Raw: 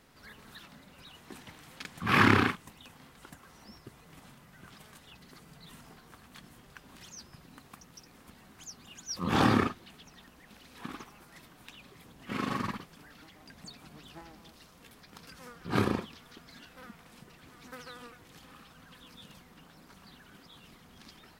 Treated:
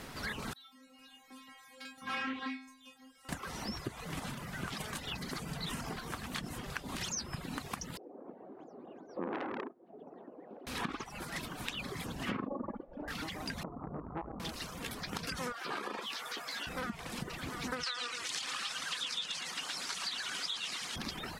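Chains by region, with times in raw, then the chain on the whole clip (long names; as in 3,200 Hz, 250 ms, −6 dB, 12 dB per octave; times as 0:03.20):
0:00.53–0:03.29: low-shelf EQ 240 Hz −8 dB + stiff-string resonator 260 Hz, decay 0.71 s, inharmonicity 0.002 + highs frequency-modulated by the lows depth 0.2 ms
0:07.97–0:10.67: flat-topped band-pass 460 Hz, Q 1.2 + saturating transformer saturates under 2,900 Hz
0:12.47–0:13.08: low-pass with resonance 590 Hz, resonance Q 2.2 + parametric band 99 Hz −10.5 dB 2.2 octaves + comb filter 3.5 ms, depth 48%
0:13.63–0:14.40: Butterworth low-pass 1,300 Hz 96 dB per octave + saturating transformer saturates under 920 Hz
0:15.52–0:16.67: high-pass filter 530 Hz + downward compressor 5 to 1, threshold −50 dBFS + double-tracking delay 14 ms −5.5 dB
0:17.83–0:20.96: meter weighting curve ITU-R 468 + feedback echo at a low word length 113 ms, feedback 35%, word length 11 bits, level −5.5 dB
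whole clip: reverb reduction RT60 0.54 s; treble cut that deepens with the level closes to 880 Hz, closed at −30 dBFS; downward compressor 16 to 1, threshold −49 dBFS; level +15 dB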